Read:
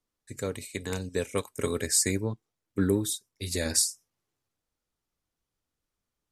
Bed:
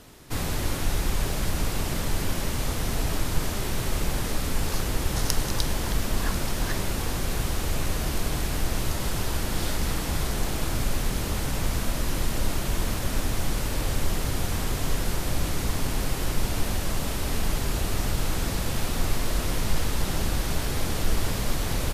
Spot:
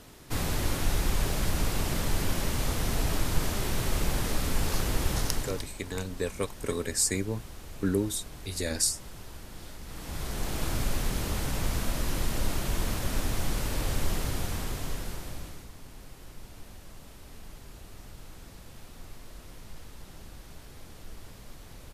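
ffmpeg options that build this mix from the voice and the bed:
ffmpeg -i stem1.wav -i stem2.wav -filter_complex "[0:a]adelay=5050,volume=-2dB[link_01];[1:a]volume=12.5dB,afade=type=out:start_time=5.1:duration=0.58:silence=0.16788,afade=type=in:start_time=9.86:duration=0.8:silence=0.199526,afade=type=out:start_time=14.13:duration=1.56:silence=0.133352[link_02];[link_01][link_02]amix=inputs=2:normalize=0" out.wav

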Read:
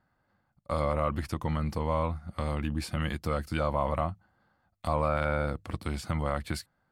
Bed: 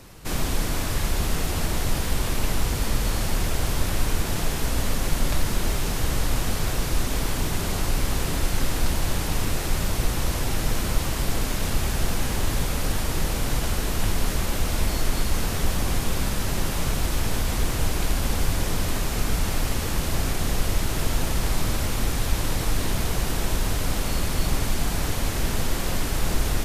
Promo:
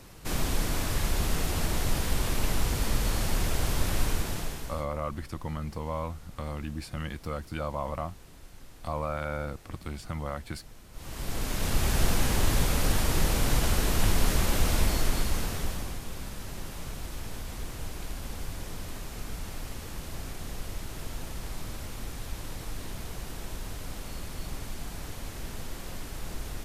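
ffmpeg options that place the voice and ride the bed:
ffmpeg -i stem1.wav -i stem2.wav -filter_complex "[0:a]adelay=4000,volume=-4.5dB[link_01];[1:a]volume=22dB,afade=type=out:start_time=4.03:duration=0.84:silence=0.0749894,afade=type=in:start_time=10.92:duration=1.06:silence=0.0530884,afade=type=out:start_time=14.68:duration=1.3:silence=0.223872[link_02];[link_01][link_02]amix=inputs=2:normalize=0" out.wav

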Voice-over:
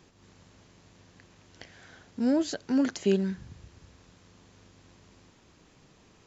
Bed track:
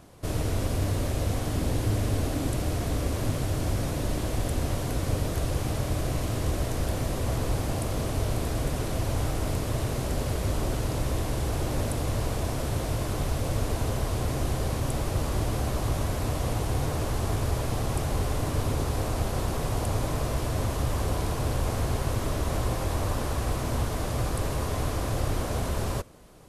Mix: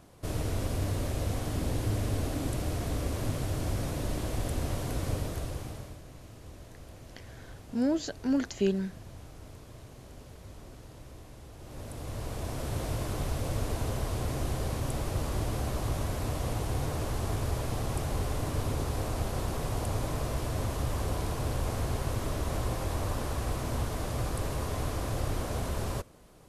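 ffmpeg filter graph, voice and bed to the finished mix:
ffmpeg -i stem1.wav -i stem2.wav -filter_complex "[0:a]adelay=5550,volume=-2.5dB[link_01];[1:a]volume=12.5dB,afade=type=out:start_time=5.07:duration=0.93:silence=0.149624,afade=type=in:start_time=11.58:duration=1.26:silence=0.149624[link_02];[link_01][link_02]amix=inputs=2:normalize=0" out.wav

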